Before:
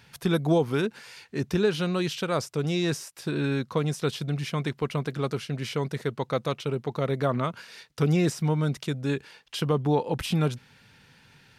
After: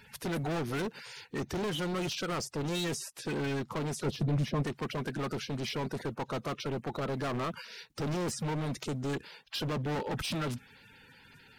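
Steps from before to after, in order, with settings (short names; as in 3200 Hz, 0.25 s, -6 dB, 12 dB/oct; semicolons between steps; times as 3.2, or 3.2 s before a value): bin magnitudes rounded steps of 30 dB; overloaded stage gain 31 dB; 4.05–4.63 tilt shelf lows +6 dB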